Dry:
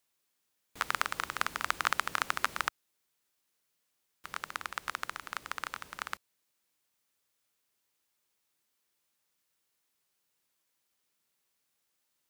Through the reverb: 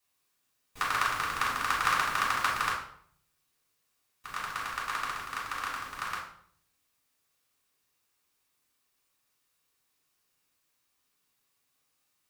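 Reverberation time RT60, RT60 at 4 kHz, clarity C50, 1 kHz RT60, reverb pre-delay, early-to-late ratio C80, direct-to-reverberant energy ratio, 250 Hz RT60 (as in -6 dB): 0.60 s, 0.50 s, 4.5 dB, 0.60 s, 3 ms, 8.5 dB, -6.0 dB, 0.70 s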